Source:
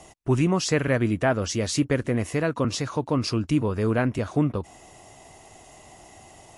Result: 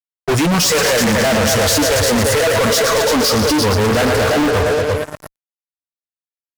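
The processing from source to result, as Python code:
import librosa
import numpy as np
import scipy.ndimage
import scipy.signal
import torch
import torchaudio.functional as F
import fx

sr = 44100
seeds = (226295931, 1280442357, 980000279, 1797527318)

y = fx.echo_heads(x, sr, ms=115, heads='all three', feedback_pct=55, wet_db=-11)
y = fx.noise_reduce_blind(y, sr, reduce_db=21)
y = fx.fuzz(y, sr, gain_db=45.0, gate_db=-49.0)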